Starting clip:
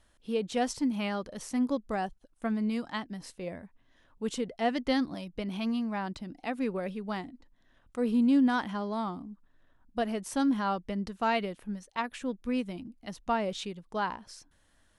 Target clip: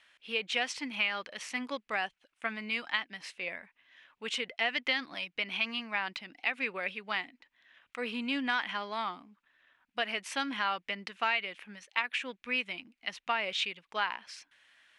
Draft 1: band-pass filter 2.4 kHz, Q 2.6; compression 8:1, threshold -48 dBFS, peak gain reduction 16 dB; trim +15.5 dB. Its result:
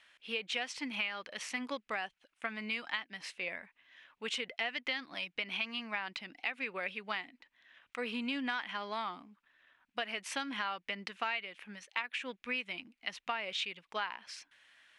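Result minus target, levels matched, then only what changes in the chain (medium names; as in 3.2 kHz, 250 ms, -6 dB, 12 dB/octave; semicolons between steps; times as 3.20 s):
compression: peak gain reduction +6 dB
change: compression 8:1, threshold -41 dBFS, peak gain reduction 9.5 dB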